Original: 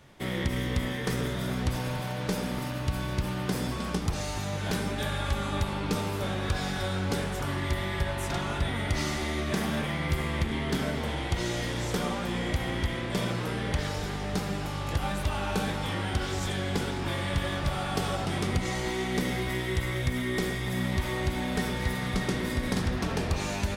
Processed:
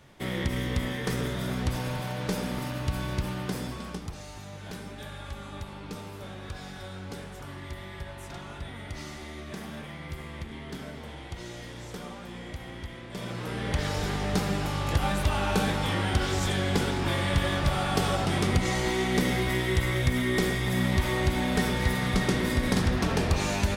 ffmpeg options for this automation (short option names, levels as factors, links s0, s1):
-af "volume=4.73,afade=t=out:st=3.13:d=1.04:silence=0.316228,afade=t=in:st=13.1:d=0.32:silence=0.473151,afade=t=in:st=13.42:d=0.66:silence=0.446684"